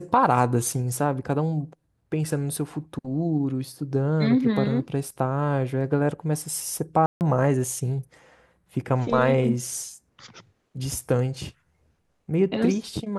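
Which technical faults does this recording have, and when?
7.06–7.21 gap 0.149 s

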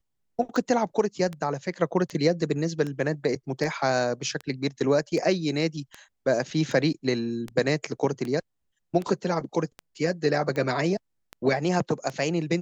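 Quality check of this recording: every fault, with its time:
tick 78 rpm -20 dBFS

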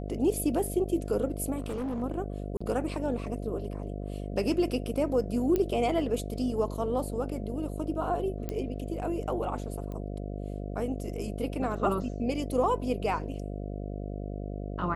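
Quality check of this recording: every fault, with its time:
buzz 50 Hz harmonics 14 -36 dBFS
1.57–2.03 clipped -29.5 dBFS
2.57–2.6 gap 35 ms
5.56 pop -16 dBFS
8.49 pop -20 dBFS
9.92 pop -28 dBFS

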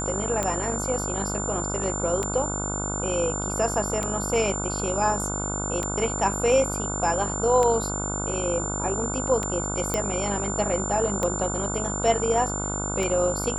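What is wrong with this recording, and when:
buzz 50 Hz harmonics 30 -31 dBFS
tick 33 1/3 rpm -12 dBFS
tone 7200 Hz -30 dBFS
9.94 pop -10 dBFS

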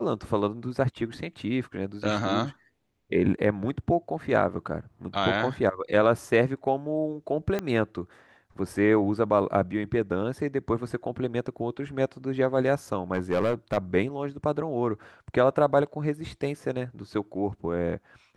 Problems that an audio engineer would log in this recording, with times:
7.59 pop -15 dBFS
13.14–13.78 clipped -20 dBFS

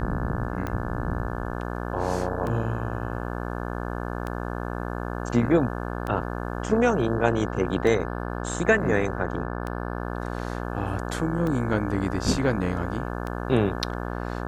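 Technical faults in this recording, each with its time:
buzz 60 Hz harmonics 29 -31 dBFS
tick 33 1/3 rpm -18 dBFS

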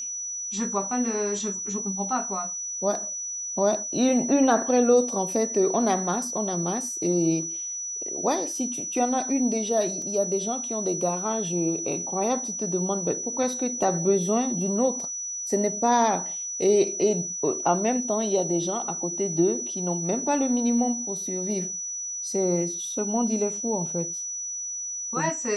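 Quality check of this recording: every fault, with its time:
tone 5900 Hz -30 dBFS
10.02 gap 2.6 ms

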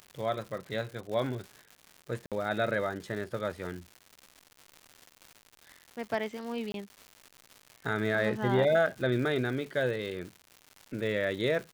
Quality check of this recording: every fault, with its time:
crackle 240/s -39 dBFS
2.26–2.32 gap 57 ms
6.72–6.74 gap 22 ms

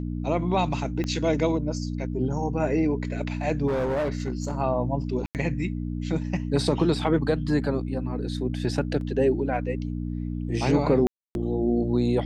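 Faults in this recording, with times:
hum 60 Hz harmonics 5 -30 dBFS
1.04 pop -17 dBFS
3.67–4.55 clipped -22.5 dBFS
5.26–5.35 gap 88 ms
9.01 gap 2.1 ms
11.07–11.35 gap 0.281 s

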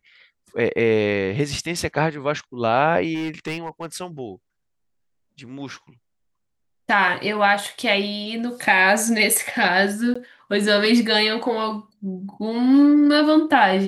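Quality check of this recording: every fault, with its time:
3.14–3.86 clipped -23 dBFS
10.14–10.15 gap 15 ms

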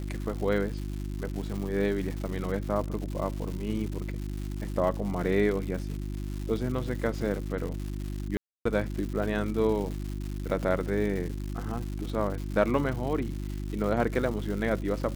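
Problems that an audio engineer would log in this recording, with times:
crackle 260/s -35 dBFS
hum 50 Hz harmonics 7 -34 dBFS
8.37–8.65 gap 0.284 s

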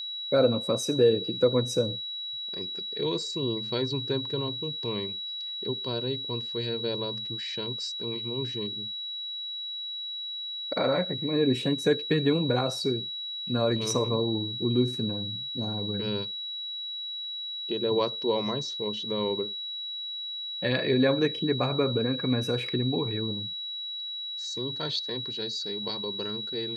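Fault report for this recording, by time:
tone 3900 Hz -33 dBFS

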